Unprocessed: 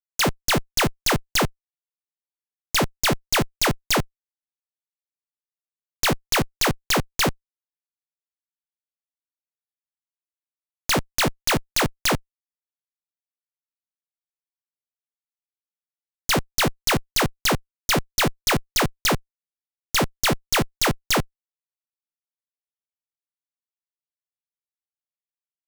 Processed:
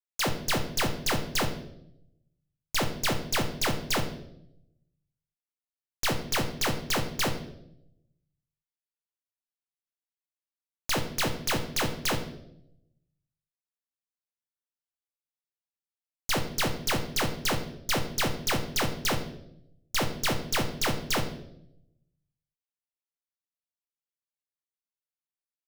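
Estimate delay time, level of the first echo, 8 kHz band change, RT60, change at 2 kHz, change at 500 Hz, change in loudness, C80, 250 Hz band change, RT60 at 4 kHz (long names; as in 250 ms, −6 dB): no echo audible, no echo audible, −7.0 dB, 0.80 s, −7.0 dB, −6.5 dB, −7.0 dB, 12.5 dB, −6.5 dB, 0.65 s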